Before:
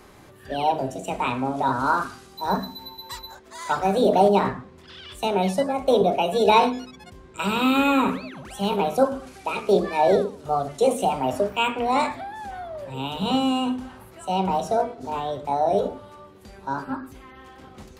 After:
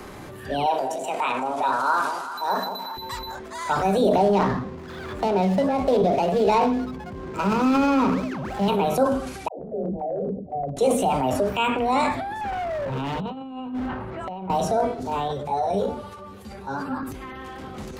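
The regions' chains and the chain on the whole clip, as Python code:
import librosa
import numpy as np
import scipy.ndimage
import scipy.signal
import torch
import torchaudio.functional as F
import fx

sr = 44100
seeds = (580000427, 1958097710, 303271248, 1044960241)

y = fx.chain(x, sr, fx.highpass(hz=530.0, slope=12),
    fx.echo_alternate(ms=189, hz=880.0, feedback_pct=51, wet_db=-9.5), at=(0.66, 2.97))
y = fx.chain(y, sr, fx.median_filter(points=15),
    fx.high_shelf(hz=7300.0, db=-10.5),
    fx.band_squash(depth_pct=40), at=(4.17, 8.68))
y = fx.chain(y, sr, fx.cheby_ripple(hz=760.0, ripple_db=6),
    fx.level_steps(step_db=15),
    fx.dispersion(late='lows', ms=113.0, hz=370.0), at=(9.48, 10.77))
y = fx.chain(y, sr, fx.lowpass(hz=1900.0, slope=12),
    fx.over_compress(threshold_db=-31.0, ratio=-0.5),
    fx.clip_hard(threshold_db=-29.5), at=(12.41, 14.5))
y = fx.chain(y, sr, fx.notch_comb(f0_hz=320.0),
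    fx.ensemble(), at=(15.28, 17.03))
y = fx.low_shelf(y, sr, hz=200.0, db=4.0)
y = fx.transient(y, sr, attack_db=-2, sustain_db=7)
y = fx.band_squash(y, sr, depth_pct=40)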